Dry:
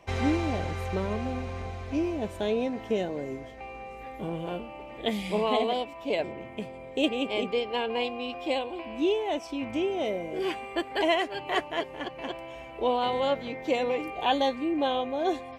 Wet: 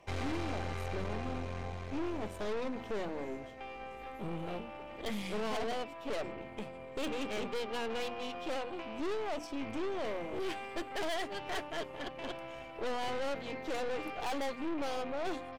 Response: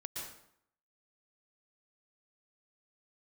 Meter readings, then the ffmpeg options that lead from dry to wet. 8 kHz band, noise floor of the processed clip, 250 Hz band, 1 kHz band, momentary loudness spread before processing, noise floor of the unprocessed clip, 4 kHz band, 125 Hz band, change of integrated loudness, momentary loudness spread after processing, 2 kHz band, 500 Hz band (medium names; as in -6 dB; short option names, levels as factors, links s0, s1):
no reading, -47 dBFS, -9.0 dB, -9.0 dB, 11 LU, -43 dBFS, -9.5 dB, -7.0 dB, -9.0 dB, 7 LU, -6.5 dB, -9.0 dB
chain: -af "bandreject=f=60:t=h:w=6,bandreject=f=120:t=h:w=6,bandreject=f=180:t=h:w=6,bandreject=f=240:t=h:w=6,bandreject=f=300:t=h:w=6,aresample=32000,aresample=44100,aeval=exprs='(tanh(50.1*val(0)+0.75)-tanh(0.75))/50.1':c=same"